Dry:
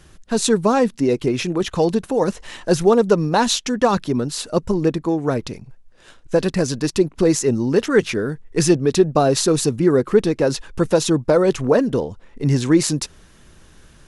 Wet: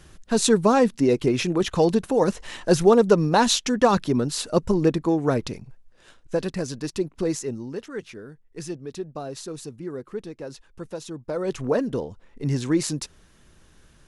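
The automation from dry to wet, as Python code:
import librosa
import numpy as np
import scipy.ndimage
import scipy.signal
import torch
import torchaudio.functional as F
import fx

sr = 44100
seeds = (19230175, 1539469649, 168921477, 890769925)

y = fx.gain(x, sr, db=fx.line((5.45, -1.5), (6.62, -9.0), (7.31, -9.0), (7.9, -18.0), (11.15, -18.0), (11.61, -7.0)))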